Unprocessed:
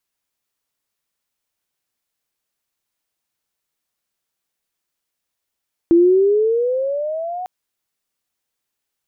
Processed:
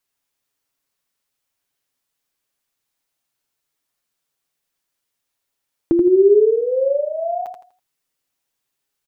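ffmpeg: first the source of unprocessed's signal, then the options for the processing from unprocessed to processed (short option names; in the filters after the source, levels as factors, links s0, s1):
-f lavfi -i "aevalsrc='pow(10,(-7.5-16.5*t/1.55)/20)*sin(2*PI*332*1.55/(14*log(2)/12)*(exp(14*log(2)/12*t/1.55)-1))':d=1.55:s=44100"
-filter_complex "[0:a]aecho=1:1:7.3:0.4,asplit=2[s0][s1];[s1]aecho=0:1:82|164|246|328:0.501|0.15|0.0451|0.0135[s2];[s0][s2]amix=inputs=2:normalize=0"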